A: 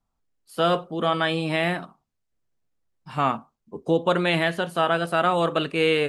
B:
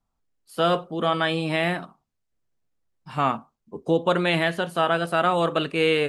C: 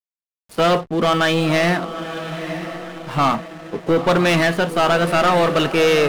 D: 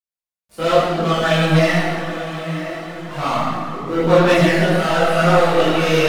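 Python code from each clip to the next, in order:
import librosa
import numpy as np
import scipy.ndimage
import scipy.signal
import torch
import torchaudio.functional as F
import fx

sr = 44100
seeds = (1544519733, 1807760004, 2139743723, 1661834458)

y1 = x
y2 = fx.leveller(y1, sr, passes=3)
y2 = fx.echo_diffused(y2, sr, ms=956, feedback_pct=51, wet_db=-10)
y2 = fx.backlash(y2, sr, play_db=-34.0)
y2 = y2 * 10.0 ** (-1.5 / 20.0)
y3 = fx.rev_plate(y2, sr, seeds[0], rt60_s=1.8, hf_ratio=0.75, predelay_ms=0, drr_db=-9.0)
y3 = fx.chorus_voices(y3, sr, voices=4, hz=0.87, base_ms=22, depth_ms=2.9, mix_pct=55)
y3 = y3 * 10.0 ** (-6.0 / 20.0)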